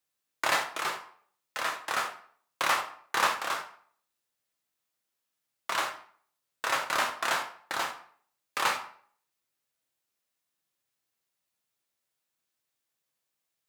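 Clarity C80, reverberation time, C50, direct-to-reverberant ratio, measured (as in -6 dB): 14.5 dB, 0.55 s, 9.5 dB, 3.0 dB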